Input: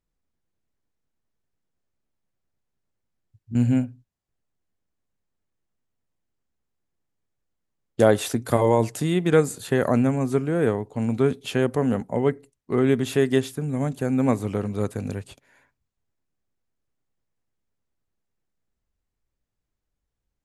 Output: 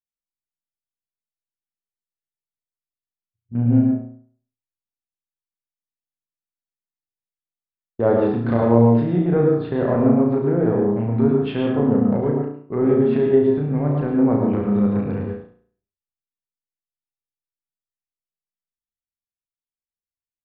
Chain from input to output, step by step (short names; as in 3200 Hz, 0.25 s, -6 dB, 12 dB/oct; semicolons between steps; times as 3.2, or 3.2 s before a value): low-pass opened by the level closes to 430 Hz, open at -18 dBFS; expander -37 dBFS; treble ducked by the level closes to 1000 Hz, closed at -19.5 dBFS; transient shaper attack -6 dB, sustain +1 dB; in parallel at +1.5 dB: compressor, threshold -30 dBFS, peak gain reduction 16 dB; on the sum: flutter echo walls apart 5.9 m, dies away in 0.5 s; on a send at -2.5 dB: reverb RT60 0.35 s, pre-delay 97 ms; on the sum: downsampling 11025 Hz; mismatched tape noise reduction decoder only; gain -2 dB